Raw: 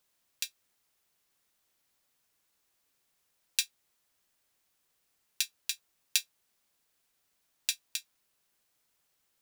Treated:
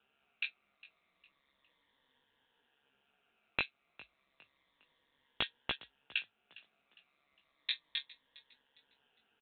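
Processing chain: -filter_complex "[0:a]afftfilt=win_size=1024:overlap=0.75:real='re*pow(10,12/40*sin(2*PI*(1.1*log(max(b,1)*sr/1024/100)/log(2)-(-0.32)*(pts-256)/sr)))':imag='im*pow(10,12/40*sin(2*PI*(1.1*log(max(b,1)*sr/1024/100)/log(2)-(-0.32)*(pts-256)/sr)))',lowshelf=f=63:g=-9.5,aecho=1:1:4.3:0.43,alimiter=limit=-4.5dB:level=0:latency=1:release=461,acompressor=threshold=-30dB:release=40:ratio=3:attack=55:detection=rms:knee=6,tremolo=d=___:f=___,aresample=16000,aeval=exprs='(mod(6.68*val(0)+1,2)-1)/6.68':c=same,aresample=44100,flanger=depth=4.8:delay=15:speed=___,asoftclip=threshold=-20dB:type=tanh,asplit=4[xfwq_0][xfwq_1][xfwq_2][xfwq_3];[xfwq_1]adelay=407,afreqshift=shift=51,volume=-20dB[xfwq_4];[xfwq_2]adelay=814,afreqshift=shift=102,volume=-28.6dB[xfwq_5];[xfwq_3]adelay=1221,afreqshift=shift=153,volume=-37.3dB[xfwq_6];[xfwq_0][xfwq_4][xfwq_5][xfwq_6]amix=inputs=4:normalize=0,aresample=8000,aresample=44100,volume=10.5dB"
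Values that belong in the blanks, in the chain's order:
0.788, 140, 0.68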